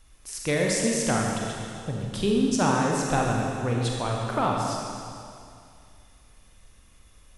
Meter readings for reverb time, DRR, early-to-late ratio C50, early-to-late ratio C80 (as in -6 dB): 2.4 s, -1.5 dB, 0.0 dB, 1.5 dB